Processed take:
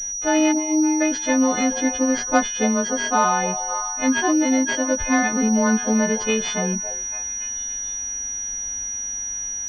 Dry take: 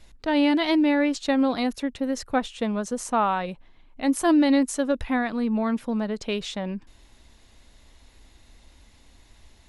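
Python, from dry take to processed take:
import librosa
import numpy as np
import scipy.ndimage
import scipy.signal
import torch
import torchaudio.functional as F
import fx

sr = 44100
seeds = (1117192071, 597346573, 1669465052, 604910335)

p1 = fx.freq_snap(x, sr, grid_st=3)
p2 = fx.vowel_filter(p1, sr, vowel='u', at=(0.51, 1.0), fade=0.02)
p3 = p2 + fx.echo_stepped(p2, sr, ms=282, hz=630.0, octaves=0.7, feedback_pct=70, wet_db=-10, dry=0)
p4 = fx.rider(p3, sr, range_db=4, speed_s=0.5)
p5 = fx.pwm(p4, sr, carrier_hz=5800.0)
y = p5 * librosa.db_to_amplitude(4.0)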